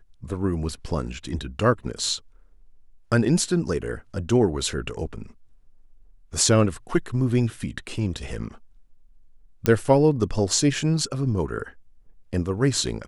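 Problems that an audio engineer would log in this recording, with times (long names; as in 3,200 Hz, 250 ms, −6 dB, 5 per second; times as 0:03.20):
0:09.66: click −6 dBFS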